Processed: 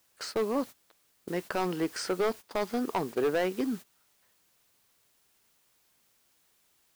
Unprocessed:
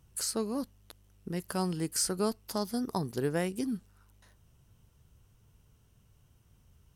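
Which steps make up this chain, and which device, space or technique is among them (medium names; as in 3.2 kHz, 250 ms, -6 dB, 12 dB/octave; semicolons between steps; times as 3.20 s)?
aircraft radio (band-pass 360–2600 Hz; hard clipper -31.5 dBFS, distortion -9 dB; white noise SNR 18 dB; gate -48 dBFS, range -17 dB); trim +9 dB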